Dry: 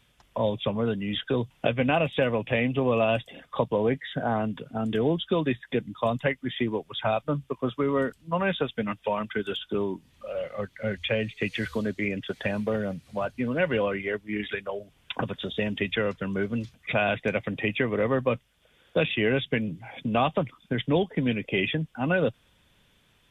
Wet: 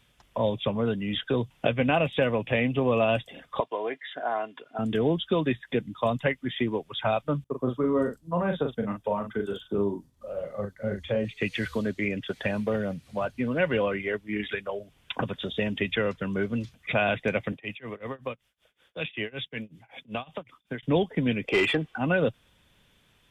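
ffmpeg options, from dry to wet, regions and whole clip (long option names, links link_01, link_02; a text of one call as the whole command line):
ffmpeg -i in.wav -filter_complex "[0:a]asettb=1/sr,asplit=3[link_01][link_02][link_03];[link_01]atrim=end=3.604[link_04];[link_02]atrim=start=3.6:end=4.79,asetpts=PTS-STARTPTS,afade=type=in:duration=0.004:curve=qsin,afade=type=out:start_time=1.186:duration=0.004:curve=qsin,highpass=590,aemphasis=mode=reproduction:type=50kf,aecho=1:1:2.9:0.43,atrim=end_sample=52479[link_05];[link_03]atrim=start=4.786[link_06];[link_04][link_05]acrossfade=duration=0.004:curve1=hsin:curve2=qsin[link_07];[link_07][link_06]acrossfade=duration=0.004:curve1=qsin:curve2=hsin,asettb=1/sr,asplit=3[link_08][link_09][link_10];[link_08]atrim=end=7.444[link_11];[link_09]atrim=start=7.44:end=11.25,asetpts=PTS-STARTPTS,afade=type=in:duration=0.004:curve=qsin,afade=type=out:start_time=3.806:duration=0.004:curve=qsin,agate=range=-33dB:threshold=-55dB:ratio=3:release=100:detection=peak,equalizer=frequency=2600:width=0.99:gain=-15,asplit=2[link_12][link_13];[link_13]adelay=40,volume=-5.5dB[link_14];[link_12][link_14]amix=inputs=2:normalize=0,atrim=end_sample=168021[link_15];[link_10]atrim=start=11.246[link_16];[link_11][link_15]acrossfade=duration=0.004:curve1=hsin:curve2=qsin[link_17];[link_17][link_16]acrossfade=duration=0.004:curve1=qsin:curve2=hsin,asettb=1/sr,asplit=3[link_18][link_19][link_20];[link_18]atrim=end=17.524[link_21];[link_19]atrim=start=17.52:end=20.83,asetpts=PTS-STARTPTS,afade=type=in:duration=0.004:curve=qsin,afade=type=out:start_time=3.306:duration=0.004:curve=qsin,lowshelf=frequency=410:gain=-7.5,acrossover=split=170|3000[link_22][link_23][link_24];[link_23]acompressor=threshold=-27dB:ratio=6:attack=3.2:release=140:knee=2.83:detection=peak[link_25];[link_22][link_25][link_24]amix=inputs=3:normalize=0,tremolo=f=5.3:d=0.96[link_26];[link_20]atrim=start=20.826[link_27];[link_21][link_26]acrossfade=duration=0.004:curve1=hsin:curve2=qsin[link_28];[link_28][link_27]acrossfade=duration=0.004:curve1=qsin:curve2=hsin,asettb=1/sr,asplit=3[link_29][link_30][link_31];[link_29]atrim=end=21.474[link_32];[link_30]atrim=start=21.47:end=21.98,asetpts=PTS-STARTPTS,afade=type=in:duration=0.004:curve=qsin,afade=type=out:start_time=0.506:duration=0.004:curve=qsin,aecho=1:1:2.6:0.4,atrim=end_sample=22491,asplit=2[link_33][link_34];[link_34]highpass=frequency=720:poles=1,volume=17dB,asoftclip=type=tanh:threshold=-12.5dB[link_35];[link_33][link_35]amix=inputs=2:normalize=0,lowpass=frequency=1800:poles=1,volume=-6dB[link_36];[link_31]atrim=start=21.976[link_37];[link_32][link_36]acrossfade=duration=0.004:curve1=hsin:curve2=qsin[link_38];[link_38][link_37]acrossfade=duration=0.004:curve1=qsin:curve2=hsin" out.wav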